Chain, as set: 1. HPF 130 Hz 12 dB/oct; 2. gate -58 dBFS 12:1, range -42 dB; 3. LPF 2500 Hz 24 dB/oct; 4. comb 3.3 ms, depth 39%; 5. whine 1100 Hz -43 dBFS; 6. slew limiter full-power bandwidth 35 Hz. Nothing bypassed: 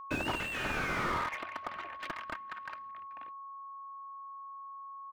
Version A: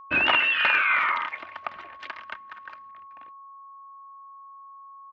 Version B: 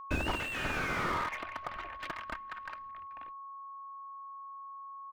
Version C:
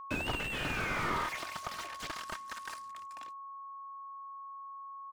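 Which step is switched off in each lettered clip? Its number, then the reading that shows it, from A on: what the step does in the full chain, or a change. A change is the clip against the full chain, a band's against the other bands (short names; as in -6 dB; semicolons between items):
6, 250 Hz band -11.5 dB; 1, 125 Hz band +2.5 dB; 3, 8 kHz band +5.5 dB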